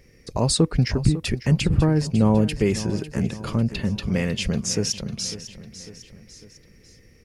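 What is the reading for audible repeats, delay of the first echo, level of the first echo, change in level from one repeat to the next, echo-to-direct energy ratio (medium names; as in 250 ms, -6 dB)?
3, 550 ms, -14.0 dB, -5.5 dB, -12.5 dB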